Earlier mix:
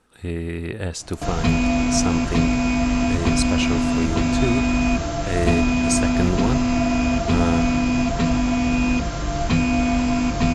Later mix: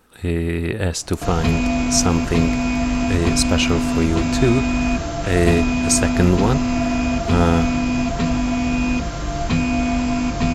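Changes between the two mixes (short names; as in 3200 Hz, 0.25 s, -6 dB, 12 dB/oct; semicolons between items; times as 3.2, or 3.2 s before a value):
speech +6.0 dB; master: remove steep low-pass 11000 Hz 36 dB/oct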